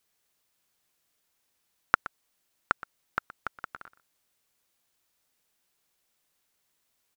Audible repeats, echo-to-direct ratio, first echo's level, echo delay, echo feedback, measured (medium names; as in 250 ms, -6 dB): 1, -17.0 dB, -17.0 dB, 121 ms, no regular repeats